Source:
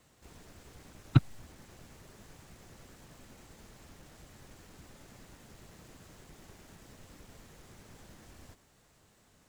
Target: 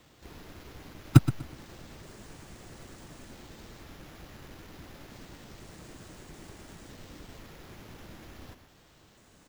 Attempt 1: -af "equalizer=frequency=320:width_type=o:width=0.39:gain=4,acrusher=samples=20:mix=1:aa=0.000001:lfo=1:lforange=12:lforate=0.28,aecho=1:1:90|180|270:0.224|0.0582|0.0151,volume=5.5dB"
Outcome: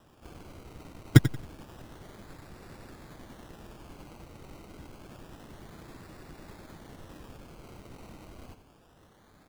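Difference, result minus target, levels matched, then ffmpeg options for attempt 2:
sample-and-hold swept by an LFO: distortion +10 dB; echo 32 ms early
-af "equalizer=frequency=320:width_type=o:width=0.39:gain=4,acrusher=samples=4:mix=1:aa=0.000001:lfo=1:lforange=2.4:lforate=0.28,aecho=1:1:122|244|366:0.224|0.0582|0.0151,volume=5.5dB"

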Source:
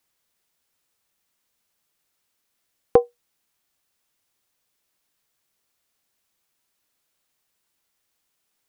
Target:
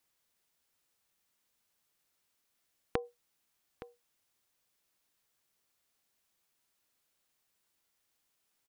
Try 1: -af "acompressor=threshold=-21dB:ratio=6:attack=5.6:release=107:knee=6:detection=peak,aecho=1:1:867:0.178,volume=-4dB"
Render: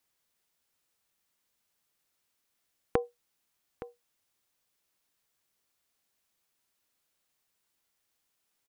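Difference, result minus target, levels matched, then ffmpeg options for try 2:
downward compressor: peak gain reduction −7 dB
-af "acompressor=threshold=-29.5dB:ratio=6:attack=5.6:release=107:knee=6:detection=peak,aecho=1:1:867:0.178,volume=-4dB"

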